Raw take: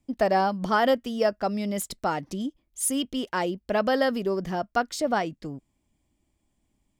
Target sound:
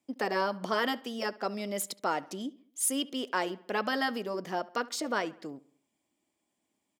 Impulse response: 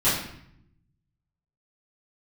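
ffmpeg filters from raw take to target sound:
-filter_complex "[0:a]highpass=310,afftfilt=real='re*lt(hypot(re,im),0.447)':imag='im*lt(hypot(re,im),0.447)':win_size=1024:overlap=0.75,asplit=2[s0][s1];[s1]adelay=70,lowpass=f=3700:p=1,volume=0.1,asplit=2[s2][s3];[s3]adelay=70,lowpass=f=3700:p=1,volume=0.5,asplit=2[s4][s5];[s5]adelay=70,lowpass=f=3700:p=1,volume=0.5,asplit=2[s6][s7];[s7]adelay=70,lowpass=f=3700:p=1,volume=0.5[s8];[s0][s2][s4][s6][s8]amix=inputs=5:normalize=0,volume=0.841"

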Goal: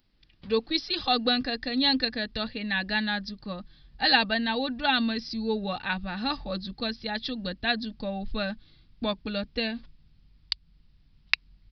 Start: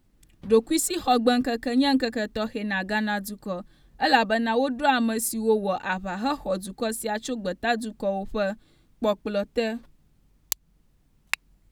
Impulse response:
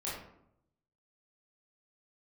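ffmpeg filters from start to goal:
-af "asubboost=boost=3.5:cutoff=220,aresample=11025,aresample=44100,crystalizer=i=8:c=0,volume=0.422"

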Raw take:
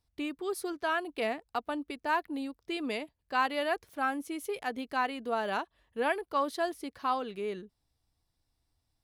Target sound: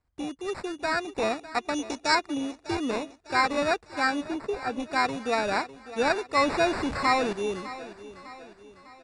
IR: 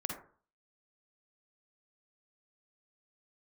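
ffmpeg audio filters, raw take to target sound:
-filter_complex "[0:a]asettb=1/sr,asplit=3[s0][s1][s2];[s0]atrim=end=6.374[s3];[s1]atrim=start=6.37:end=7.33,asetpts=PTS-STARTPTS,afade=t=in:d=0.004:c=qsin,afade=t=out:st=0.956:d=0.004:c=qsin,aeval=exprs='val(0)+0.5*0.0237*sgn(val(0))':c=same[s4];[s2]atrim=start=7.326[s5];[s3][s4]acrossfade=d=0.004:c1=hsin:c2=qsin[s6];[s6][s5]acrossfade=d=0.004:c1=qsin:c2=hsin,dynaudnorm=f=640:g=3:m=1.58,acrusher=samples=14:mix=1:aa=0.000001,acrossover=split=5400[s7][s8];[s8]acompressor=threshold=0.00501:ratio=4:attack=1:release=60[s9];[s7][s9]amix=inputs=2:normalize=0,asettb=1/sr,asplit=3[s10][s11][s12];[s10]atrim=end=1.744[s13];[s11]atrim=start=1.74:end=2.15,asetpts=PTS-STARTPTS,afade=t=in:d=0.004:c=qsin,afade=t=out:st=0.406:d=0.004:c=qsin,equalizer=f=5900:t=o:w=0.97:g=12.5[s14];[s12]atrim=start=2.146[s15];[s13][s14]acrossfade=d=0.004:c1=hsin:c2=qsin[s16];[s16][s15]acrossfade=d=0.004:c1=qsin:c2=hsin,aresample=22050,aresample=44100,asettb=1/sr,asplit=3[s17][s18][s19];[s17]atrim=end=4.224[s20];[s18]atrim=start=4.22:end=4.8,asetpts=PTS-STARTPTS,afade=t=in:d=0.004:c=qsin,afade=t=out:st=0.576:d=0.004:c=qsin,highshelf=f=2000:g=-10[s21];[s19]atrim=start=4.796[s22];[s20][s21]acrossfade=d=0.004:c1=hsin:c2=qsin[s23];[s23][s22]acrossfade=d=0.004:c1=qsin:c2=hsin,aecho=1:1:602|1204|1806|2408:0.168|0.0823|0.0403|0.0198,volume=1.19"

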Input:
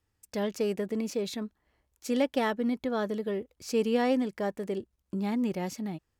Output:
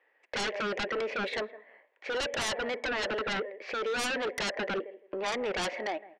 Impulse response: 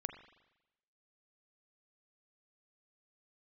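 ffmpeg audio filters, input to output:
-filter_complex "[0:a]alimiter=level_in=1.26:limit=0.0631:level=0:latency=1:release=15,volume=0.794,highpass=f=490:w=0.5412,highpass=f=490:w=1.3066,equalizer=f=560:t=q:w=4:g=5,equalizer=f=870:t=q:w=4:g=-3,equalizer=f=1300:t=q:w=4:g=-9,equalizer=f=1900:t=q:w=4:g=8,lowpass=f=2400:w=0.5412,lowpass=f=2400:w=1.3066,asplit=2[s0][s1];[s1]adelay=163,lowpass=f=1700:p=1,volume=0.0891,asplit=2[s2][s3];[s3]adelay=163,lowpass=f=1700:p=1,volume=0.17[s4];[s0][s2][s4]amix=inputs=3:normalize=0,asplit=2[s5][s6];[1:a]atrim=start_sample=2205,afade=t=out:st=0.36:d=0.01,atrim=end_sample=16317[s7];[s6][s7]afir=irnorm=-1:irlink=0,volume=0.224[s8];[s5][s8]amix=inputs=2:normalize=0,aeval=exprs='0.0668*sin(PI/2*5.62*val(0)/0.0668)':c=same,volume=0.596"

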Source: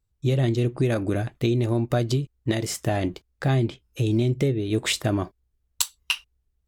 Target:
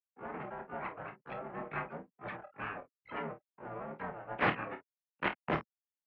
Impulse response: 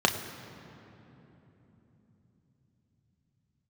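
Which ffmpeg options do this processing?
-filter_complex "[0:a]afftfilt=real='re*gte(hypot(re,im),0.126)':imag='im*gte(hypot(re,im),0.126)':win_size=1024:overlap=0.75,aderivative,aresample=11025,aeval=exprs='abs(val(0))':c=same,aresample=44100,asplit=4[s0][s1][s2][s3];[s1]asetrate=52444,aresample=44100,atempo=0.840896,volume=0.126[s4];[s2]asetrate=55563,aresample=44100,atempo=0.793701,volume=0.891[s5];[s3]asetrate=88200,aresample=44100,atempo=0.5,volume=0.708[s6];[s0][s4][s5][s6]amix=inputs=4:normalize=0,aeval=exprs='(mod(23.7*val(0)+1,2)-1)/23.7':c=same,atempo=1.1,asplit=2[s7][s8];[s8]aecho=0:1:28|51:0.422|0.224[s9];[s7][s9]amix=inputs=2:normalize=0,highpass=f=240:t=q:w=0.5412,highpass=f=240:t=q:w=1.307,lowpass=f=2500:t=q:w=0.5176,lowpass=f=2500:t=q:w=0.7071,lowpass=f=2500:t=q:w=1.932,afreqshift=-96,volume=3.35"

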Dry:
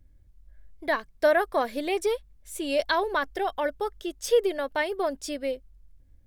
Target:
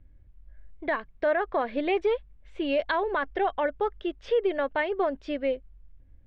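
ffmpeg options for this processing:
-af "lowpass=f=3000:w=0.5412,lowpass=f=3000:w=1.3066,alimiter=limit=0.106:level=0:latency=1:release=118,volume=1.33"

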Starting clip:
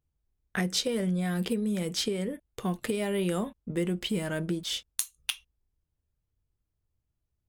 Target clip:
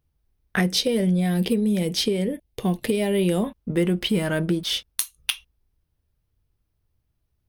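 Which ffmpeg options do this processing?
-filter_complex "[0:a]asettb=1/sr,asplit=3[s0][s1][s2];[s0]atrim=end=0.704[s3];[s1]atrim=start=0.7:end=3.44,asetpts=PTS-STARTPTS,afade=t=in:d=0.004:c=qsin,afade=t=out:st=2.736:d=0.004:c=qsin,equalizer=f=1300:t=o:w=0.72:g=-11.5[s4];[s2]atrim=start=3.436[s5];[s3][s4]acrossfade=d=0.004:c1=hsin:c2=qsin[s6];[s6][s5]acrossfade=d=0.004:c1=qsin:c2=hsin,asoftclip=type=tanh:threshold=0.211,equalizer=f=7300:t=o:w=0.33:g=-11,volume=2.51"

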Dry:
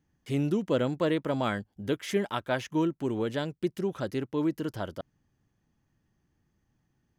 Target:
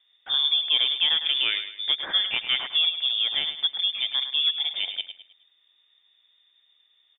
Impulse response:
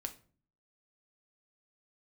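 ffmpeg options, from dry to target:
-filter_complex "[0:a]asplit=2[s0][s1];[s1]acompressor=threshold=0.0112:ratio=6,volume=1.33[s2];[s0][s2]amix=inputs=2:normalize=0,aecho=1:1:105|210|315|420:0.316|0.117|0.0433|0.016,lowpass=f=3100:t=q:w=0.5098,lowpass=f=3100:t=q:w=0.6013,lowpass=f=3100:t=q:w=0.9,lowpass=f=3100:t=q:w=2.563,afreqshift=-3700,volume=1.19"

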